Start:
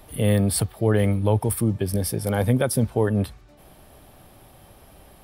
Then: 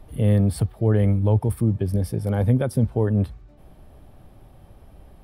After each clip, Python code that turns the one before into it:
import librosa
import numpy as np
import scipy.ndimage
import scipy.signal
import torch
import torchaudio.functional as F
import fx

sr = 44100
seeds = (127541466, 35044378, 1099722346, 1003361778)

y = fx.tilt_eq(x, sr, slope=-2.5)
y = y * 10.0 ** (-5.0 / 20.0)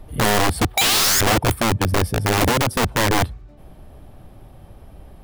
y = fx.spec_paint(x, sr, seeds[0], shape='rise', start_s=0.77, length_s=0.44, low_hz=740.0, high_hz=1800.0, level_db=-16.0)
y = (np.mod(10.0 ** (17.0 / 20.0) * y + 1.0, 2.0) - 1.0) / 10.0 ** (17.0 / 20.0)
y = y * 10.0 ** (5.0 / 20.0)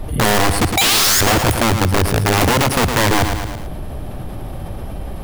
y = fx.echo_feedback(x, sr, ms=110, feedback_pct=39, wet_db=-11)
y = fx.env_flatten(y, sr, amount_pct=50)
y = y * 10.0 ** (2.0 / 20.0)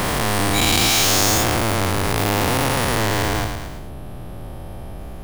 y = fx.spec_dilate(x, sr, span_ms=480)
y = y * 10.0 ** (-11.5 / 20.0)